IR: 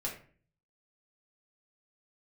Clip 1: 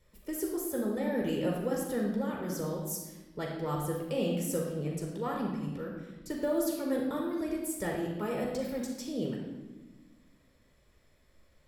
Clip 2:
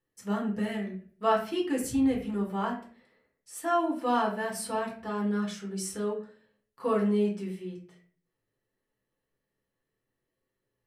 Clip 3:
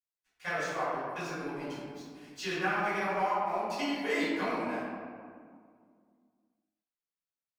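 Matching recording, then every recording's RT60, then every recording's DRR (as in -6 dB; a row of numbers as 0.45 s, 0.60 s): 2; 1.2 s, 0.45 s, 2.0 s; -1.5 dB, -3.5 dB, -13.5 dB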